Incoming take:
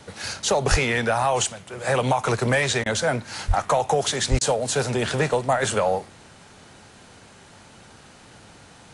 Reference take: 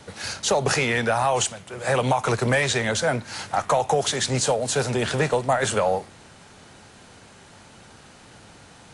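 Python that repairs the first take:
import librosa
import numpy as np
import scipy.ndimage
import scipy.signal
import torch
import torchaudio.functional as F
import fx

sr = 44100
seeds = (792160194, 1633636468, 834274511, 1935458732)

y = fx.fix_deplosive(x, sr, at_s=(0.7, 3.47, 4.3))
y = fx.fix_interpolate(y, sr, at_s=(2.84, 4.39), length_ms=19.0)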